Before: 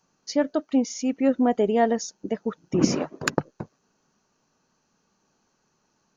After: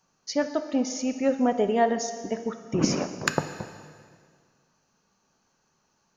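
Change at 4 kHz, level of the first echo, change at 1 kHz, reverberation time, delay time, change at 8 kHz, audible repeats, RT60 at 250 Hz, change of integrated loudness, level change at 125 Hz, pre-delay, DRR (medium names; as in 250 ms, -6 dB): +0.5 dB, no echo, 0.0 dB, 1.9 s, no echo, no reading, no echo, 2.0 s, -2.0 dB, -1.0 dB, 6 ms, 8.0 dB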